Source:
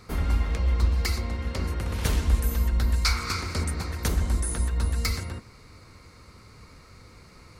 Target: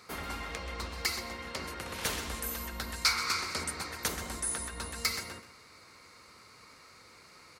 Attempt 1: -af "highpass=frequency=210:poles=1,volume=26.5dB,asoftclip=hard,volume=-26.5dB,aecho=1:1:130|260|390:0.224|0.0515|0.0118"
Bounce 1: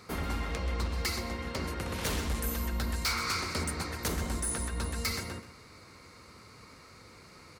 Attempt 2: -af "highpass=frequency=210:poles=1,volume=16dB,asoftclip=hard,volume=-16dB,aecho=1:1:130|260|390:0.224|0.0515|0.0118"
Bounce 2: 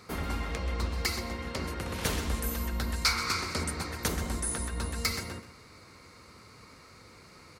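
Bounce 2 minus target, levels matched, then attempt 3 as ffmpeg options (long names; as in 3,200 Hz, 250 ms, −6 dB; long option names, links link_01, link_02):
250 Hz band +6.0 dB
-af "highpass=frequency=750:poles=1,volume=16dB,asoftclip=hard,volume=-16dB,aecho=1:1:130|260|390:0.224|0.0515|0.0118"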